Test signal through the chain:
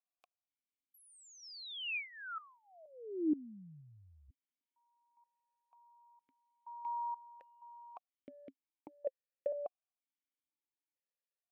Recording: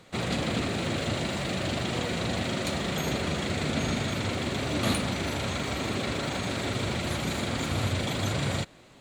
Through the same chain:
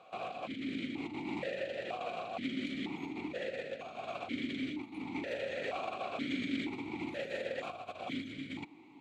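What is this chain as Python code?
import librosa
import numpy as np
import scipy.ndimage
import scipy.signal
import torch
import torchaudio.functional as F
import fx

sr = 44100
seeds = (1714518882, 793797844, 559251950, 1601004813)

y = fx.over_compress(x, sr, threshold_db=-32.0, ratio=-0.5)
y = fx.vowel_held(y, sr, hz=2.1)
y = y * librosa.db_to_amplitude(5.5)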